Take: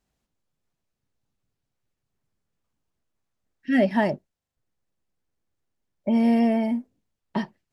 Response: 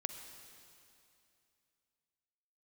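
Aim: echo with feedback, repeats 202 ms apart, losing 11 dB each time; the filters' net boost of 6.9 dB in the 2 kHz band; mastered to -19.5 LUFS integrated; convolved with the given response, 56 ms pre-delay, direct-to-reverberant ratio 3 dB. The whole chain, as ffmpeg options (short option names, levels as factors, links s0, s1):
-filter_complex "[0:a]equalizer=f=2000:t=o:g=7.5,aecho=1:1:202|404|606:0.282|0.0789|0.0221,asplit=2[s0][s1];[1:a]atrim=start_sample=2205,adelay=56[s2];[s1][s2]afir=irnorm=-1:irlink=0,volume=0.75[s3];[s0][s3]amix=inputs=2:normalize=0,volume=1.19"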